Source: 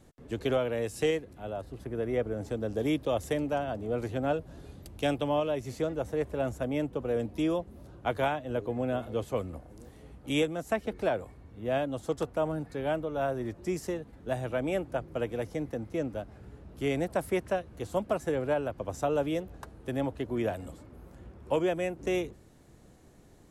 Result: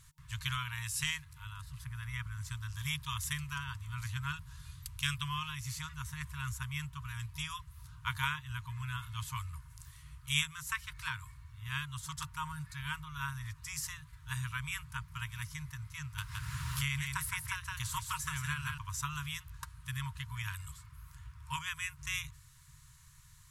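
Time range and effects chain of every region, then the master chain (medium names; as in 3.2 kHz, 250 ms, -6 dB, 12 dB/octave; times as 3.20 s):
16.18–18.78 s: delay 165 ms -5.5 dB + three bands compressed up and down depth 100%
whole clip: FFT band-reject 160–920 Hz; treble shelf 3.8 kHz +9 dB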